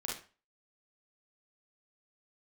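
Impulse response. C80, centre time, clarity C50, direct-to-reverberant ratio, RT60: 11.5 dB, 41 ms, 3.0 dB, -4.0 dB, 0.35 s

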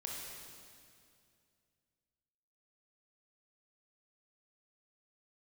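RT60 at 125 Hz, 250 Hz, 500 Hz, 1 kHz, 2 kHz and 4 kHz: 3.0 s, 2.7 s, 2.5 s, 2.2 s, 2.2 s, 2.2 s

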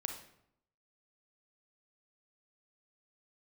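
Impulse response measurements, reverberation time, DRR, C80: 0.75 s, 4.0 dB, 10.5 dB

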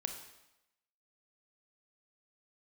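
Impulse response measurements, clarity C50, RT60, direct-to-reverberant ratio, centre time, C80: 7.0 dB, 0.90 s, 5.0 dB, 23 ms, 9.0 dB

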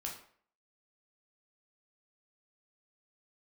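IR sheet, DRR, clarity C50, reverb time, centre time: -1.5 dB, 6.5 dB, 0.55 s, 27 ms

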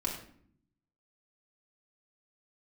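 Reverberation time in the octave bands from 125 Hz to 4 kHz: 1.2 s, 1.0 s, 0.65 s, 0.55 s, 0.50 s, 0.40 s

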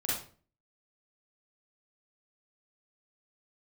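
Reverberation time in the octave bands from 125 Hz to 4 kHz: 0.55 s, 0.55 s, 0.45 s, 0.40 s, 0.35 s, 0.35 s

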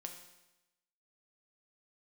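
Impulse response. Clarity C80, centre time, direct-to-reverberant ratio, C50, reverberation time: 9.5 dB, 23 ms, 3.5 dB, 7.0 dB, 0.95 s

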